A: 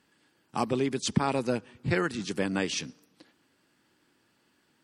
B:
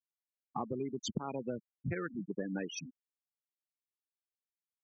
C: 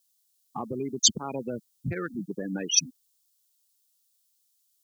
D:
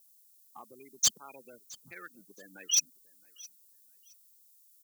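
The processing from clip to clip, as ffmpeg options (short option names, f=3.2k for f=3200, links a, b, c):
-af "afftfilt=real='re*gte(hypot(re,im),0.0708)':imag='im*gte(hypot(re,im),0.0708)':win_size=1024:overlap=0.75,acompressor=threshold=-31dB:ratio=6,volume=-2.5dB"
-filter_complex "[0:a]acrossover=split=3800[a][b];[a]alimiter=level_in=4.5dB:limit=-24dB:level=0:latency=1,volume=-4.5dB[c];[c][b]amix=inputs=2:normalize=0,aexciter=amount=6.9:drive=5:freq=3.2k,volume=6dB"
-af "aderivative,asoftclip=type=hard:threshold=-24.5dB,aecho=1:1:667|1334:0.0708|0.017,volume=4.5dB"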